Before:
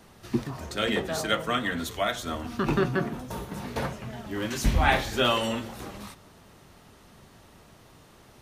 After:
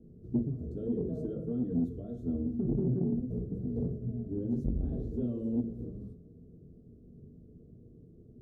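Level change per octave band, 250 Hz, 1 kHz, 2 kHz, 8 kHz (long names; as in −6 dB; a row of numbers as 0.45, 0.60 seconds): 0.0 dB, below −30 dB, below −40 dB, below −35 dB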